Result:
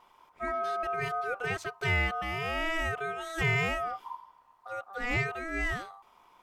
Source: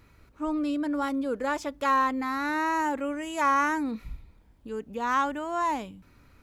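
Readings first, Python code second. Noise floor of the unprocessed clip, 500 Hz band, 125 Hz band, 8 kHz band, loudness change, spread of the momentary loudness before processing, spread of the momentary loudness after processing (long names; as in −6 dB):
−59 dBFS, −2.0 dB, can't be measured, −4.5 dB, −3.5 dB, 13 LU, 12 LU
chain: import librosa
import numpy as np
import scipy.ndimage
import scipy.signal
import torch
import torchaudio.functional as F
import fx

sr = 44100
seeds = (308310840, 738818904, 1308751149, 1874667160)

y = fx.vibrato(x, sr, rate_hz=0.46, depth_cents=8.4)
y = y * np.sin(2.0 * np.pi * 980.0 * np.arange(len(y)) / sr)
y = y * librosa.db_to_amplitude(-1.0)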